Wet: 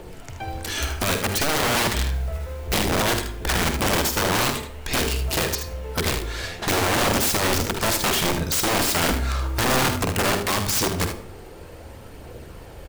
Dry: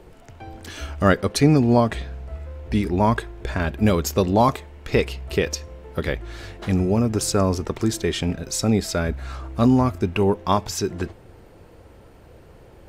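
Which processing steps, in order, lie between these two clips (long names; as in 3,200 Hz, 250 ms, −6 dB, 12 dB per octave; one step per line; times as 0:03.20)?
high-shelf EQ 2,900 Hz +6 dB
mains-hum notches 50/100/150/200/250/300/350/400/450 Hz
in parallel at −1.5 dB: downward compressor 10 to 1, threshold −26 dBFS, peak gain reduction 16 dB
on the sum: brickwall limiter −11 dBFS, peak gain reduction 9 dB
phase shifter 0.57 Hz, delay 2.7 ms, feedback 27%
wrap-around overflow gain 16.5 dB
noise that follows the level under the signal 27 dB
ambience of single reflections 48 ms −11.5 dB, 77 ms −9 dB
on a send at −12.5 dB: convolution reverb RT60 0.60 s, pre-delay 42 ms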